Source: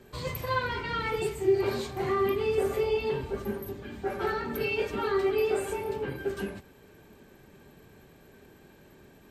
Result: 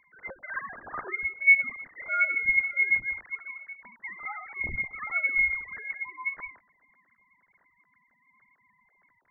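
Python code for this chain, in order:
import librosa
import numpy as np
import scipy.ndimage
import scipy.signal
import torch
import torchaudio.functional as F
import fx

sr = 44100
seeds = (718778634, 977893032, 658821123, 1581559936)

y = fx.sine_speech(x, sr)
y = fx.freq_invert(y, sr, carrier_hz=2600)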